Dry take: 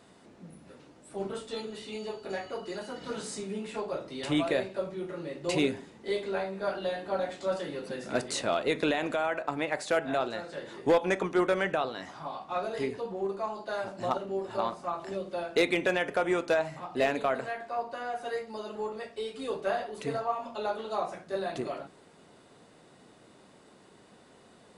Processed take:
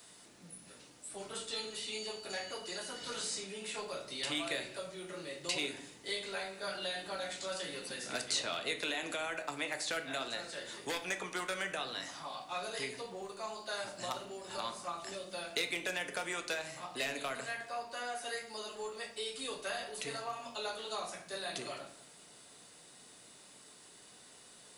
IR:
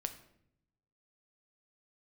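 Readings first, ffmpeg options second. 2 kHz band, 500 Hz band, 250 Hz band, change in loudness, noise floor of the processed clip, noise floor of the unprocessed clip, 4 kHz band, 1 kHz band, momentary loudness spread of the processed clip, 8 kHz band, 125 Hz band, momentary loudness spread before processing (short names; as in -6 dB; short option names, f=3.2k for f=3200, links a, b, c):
-3.5 dB, -12.0 dB, -13.5 dB, -7.0 dB, -58 dBFS, -57 dBFS, +2.5 dB, -8.5 dB, 19 LU, +4.0 dB, -12.0 dB, 11 LU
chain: -filter_complex "[0:a]acrossover=split=240|540|1200|5200[a][b][c][d][e];[a]acompressor=threshold=-46dB:ratio=4[f];[b]acompressor=threshold=-39dB:ratio=4[g];[c]acompressor=threshold=-40dB:ratio=4[h];[d]acompressor=threshold=-38dB:ratio=4[i];[e]acompressor=threshold=-58dB:ratio=4[j];[f][g][h][i][j]amix=inputs=5:normalize=0,crystalizer=i=9.5:c=0[k];[1:a]atrim=start_sample=2205[l];[k][l]afir=irnorm=-1:irlink=0,volume=-8dB"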